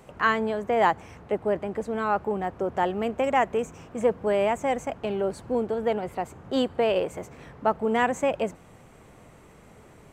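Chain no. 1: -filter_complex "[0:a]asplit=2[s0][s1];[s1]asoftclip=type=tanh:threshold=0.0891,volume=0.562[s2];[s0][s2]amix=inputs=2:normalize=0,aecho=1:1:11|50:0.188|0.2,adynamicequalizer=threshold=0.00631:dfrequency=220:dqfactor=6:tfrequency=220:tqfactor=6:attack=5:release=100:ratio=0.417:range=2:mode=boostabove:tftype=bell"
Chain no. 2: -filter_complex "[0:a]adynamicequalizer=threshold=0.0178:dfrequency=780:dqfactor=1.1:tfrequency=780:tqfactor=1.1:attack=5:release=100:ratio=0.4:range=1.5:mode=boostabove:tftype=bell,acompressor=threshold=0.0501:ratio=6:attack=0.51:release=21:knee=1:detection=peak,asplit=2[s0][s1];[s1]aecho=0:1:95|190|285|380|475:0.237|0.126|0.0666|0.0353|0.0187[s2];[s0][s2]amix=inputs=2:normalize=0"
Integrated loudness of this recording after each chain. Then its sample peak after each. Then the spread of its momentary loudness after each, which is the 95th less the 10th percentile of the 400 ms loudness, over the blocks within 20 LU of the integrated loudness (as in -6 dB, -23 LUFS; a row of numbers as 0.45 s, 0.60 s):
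-23.0 LUFS, -32.0 LUFS; -5.5 dBFS, -19.0 dBFS; 8 LU, 21 LU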